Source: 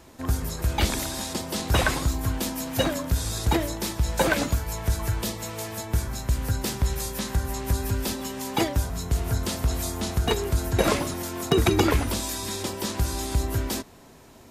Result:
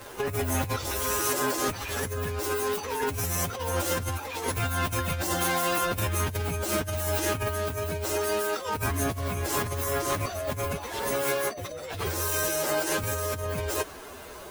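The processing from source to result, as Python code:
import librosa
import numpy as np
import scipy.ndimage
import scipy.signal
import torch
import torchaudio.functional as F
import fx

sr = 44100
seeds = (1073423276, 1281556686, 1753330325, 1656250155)

y = fx.pitch_bins(x, sr, semitones=8.0)
y = fx.peak_eq(y, sr, hz=150.0, db=-12.5, octaves=0.9)
y = fx.over_compress(y, sr, threshold_db=-38.0, ratio=-1.0)
y = y * 10.0 ** (8.0 / 20.0)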